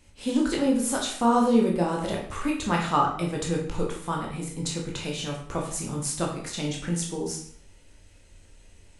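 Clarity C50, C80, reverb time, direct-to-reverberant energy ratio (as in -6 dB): 5.5 dB, 9.0 dB, 0.60 s, -1.5 dB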